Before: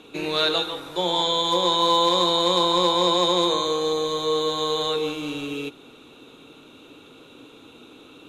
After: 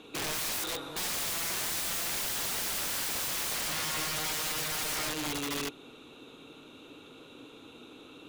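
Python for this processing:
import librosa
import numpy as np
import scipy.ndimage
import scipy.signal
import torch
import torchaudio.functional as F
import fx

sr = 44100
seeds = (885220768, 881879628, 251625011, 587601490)

y = fx.notch_comb(x, sr, f0_hz=700.0, at=(1.51, 2.01))
y = fx.peak_eq(y, sr, hz=140.0, db=-12.5, octaves=0.92, at=(3.52, 4.12))
y = (np.mod(10.0 ** (25.0 / 20.0) * y + 1.0, 2.0) - 1.0) / 10.0 ** (25.0 / 20.0)
y = y * 10.0 ** (-3.5 / 20.0)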